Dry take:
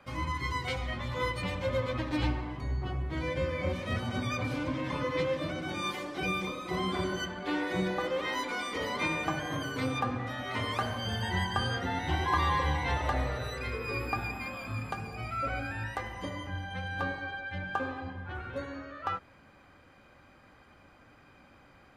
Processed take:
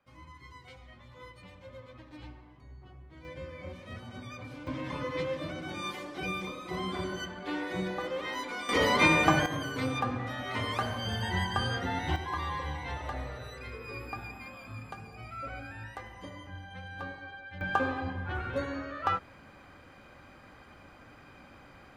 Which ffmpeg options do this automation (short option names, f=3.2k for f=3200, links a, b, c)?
-af "asetnsamples=n=441:p=0,asendcmd='3.25 volume volume -11dB;4.67 volume volume -3dB;8.69 volume volume 8.5dB;9.46 volume volume 0dB;12.16 volume volume -7dB;17.61 volume volume 4.5dB',volume=-17.5dB"